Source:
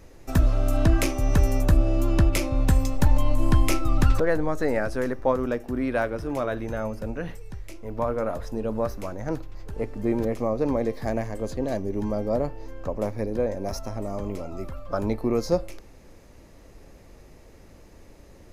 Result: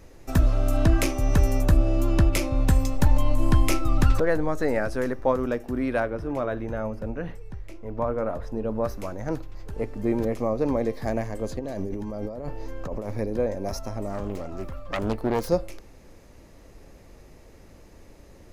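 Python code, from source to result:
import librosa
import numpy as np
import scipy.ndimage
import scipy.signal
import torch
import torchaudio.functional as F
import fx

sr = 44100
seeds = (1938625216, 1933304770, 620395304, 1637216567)

y = fx.high_shelf(x, sr, hz=3400.0, db=-11.0, at=(6.0, 8.84))
y = fx.over_compress(y, sr, threshold_db=-31.0, ratio=-1.0, at=(11.59, 13.2))
y = fx.self_delay(y, sr, depth_ms=0.56, at=(14.1, 15.49))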